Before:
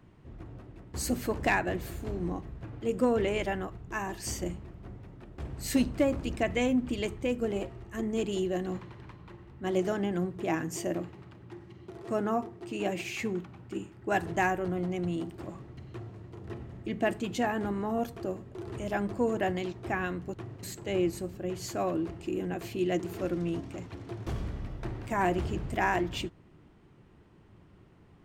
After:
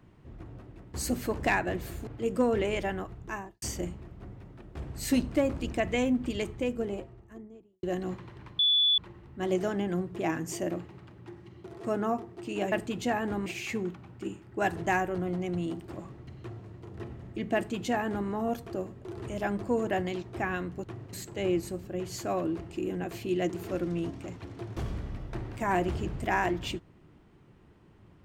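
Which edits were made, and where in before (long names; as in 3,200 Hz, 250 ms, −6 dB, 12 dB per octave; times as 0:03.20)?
0:02.07–0:02.70: remove
0:03.88–0:04.25: fade out and dull
0:07.10–0:08.46: fade out and dull
0:09.22: insert tone 3,450 Hz −20.5 dBFS 0.39 s
0:17.05–0:17.79: duplicate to 0:12.96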